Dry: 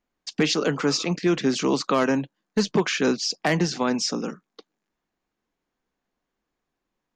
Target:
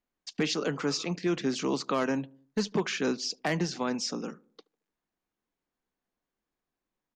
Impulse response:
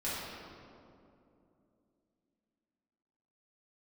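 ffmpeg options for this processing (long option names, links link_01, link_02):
-filter_complex "[0:a]asplit=2[link_01][link_02];[link_02]adelay=74,lowpass=frequency=940:poles=1,volume=-22.5dB,asplit=2[link_03][link_04];[link_04]adelay=74,lowpass=frequency=940:poles=1,volume=0.52,asplit=2[link_05][link_06];[link_06]adelay=74,lowpass=frequency=940:poles=1,volume=0.52,asplit=2[link_07][link_08];[link_08]adelay=74,lowpass=frequency=940:poles=1,volume=0.52[link_09];[link_01][link_03][link_05][link_07][link_09]amix=inputs=5:normalize=0,volume=-7dB"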